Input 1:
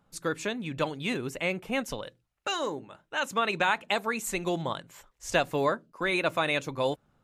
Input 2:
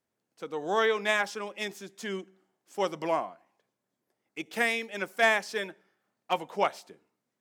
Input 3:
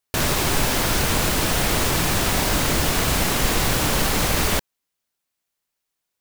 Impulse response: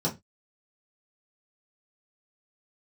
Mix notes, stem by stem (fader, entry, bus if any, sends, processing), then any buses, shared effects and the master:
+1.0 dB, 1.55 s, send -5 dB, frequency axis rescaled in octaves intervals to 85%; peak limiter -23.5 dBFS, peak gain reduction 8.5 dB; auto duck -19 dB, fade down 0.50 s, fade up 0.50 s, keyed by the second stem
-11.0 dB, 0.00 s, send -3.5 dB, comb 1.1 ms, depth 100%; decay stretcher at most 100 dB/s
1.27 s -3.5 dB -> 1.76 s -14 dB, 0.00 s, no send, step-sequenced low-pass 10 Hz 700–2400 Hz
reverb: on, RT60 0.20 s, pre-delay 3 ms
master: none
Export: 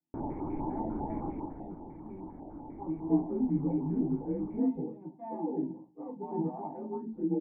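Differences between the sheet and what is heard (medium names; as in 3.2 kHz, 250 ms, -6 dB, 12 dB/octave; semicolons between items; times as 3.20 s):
stem 1: entry 1.55 s -> 2.85 s; master: extra cascade formant filter u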